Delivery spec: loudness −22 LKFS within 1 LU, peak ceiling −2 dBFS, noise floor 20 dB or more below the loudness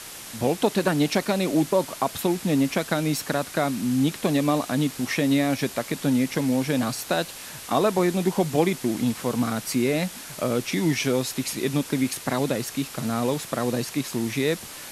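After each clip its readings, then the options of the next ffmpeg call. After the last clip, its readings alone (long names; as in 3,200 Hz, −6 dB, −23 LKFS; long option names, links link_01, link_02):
background noise floor −40 dBFS; target noise floor −45 dBFS; integrated loudness −24.5 LKFS; sample peak −7.0 dBFS; target loudness −22.0 LKFS
→ -af "afftdn=noise_reduction=6:noise_floor=-40"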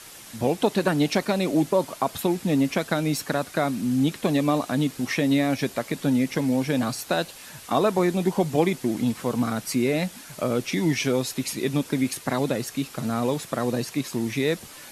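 background noise floor −44 dBFS; target noise floor −45 dBFS
→ -af "afftdn=noise_reduction=6:noise_floor=-44"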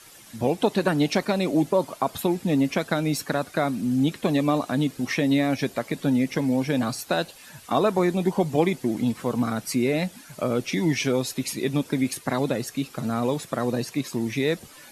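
background noise floor −48 dBFS; integrated loudness −25.0 LKFS; sample peak −7.0 dBFS; target loudness −22.0 LKFS
→ -af "volume=3dB"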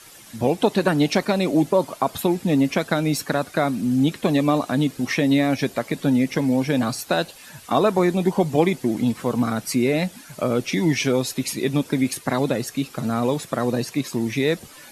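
integrated loudness −22.0 LKFS; sample peak −4.0 dBFS; background noise floor −45 dBFS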